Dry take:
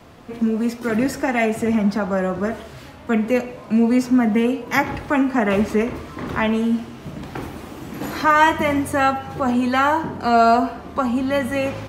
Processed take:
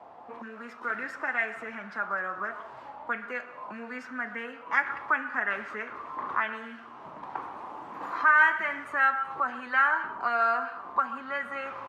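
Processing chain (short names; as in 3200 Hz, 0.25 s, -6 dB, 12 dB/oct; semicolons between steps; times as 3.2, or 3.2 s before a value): in parallel at +1.5 dB: compressor, threshold -31 dBFS, peak gain reduction 19.5 dB; on the sum: delay with a stepping band-pass 0.127 s, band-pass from 1200 Hz, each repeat 1.4 oct, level -11.5 dB; auto-wah 780–1600 Hz, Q 4.2, up, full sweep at -13.5 dBFS; echo 0.183 s -22 dB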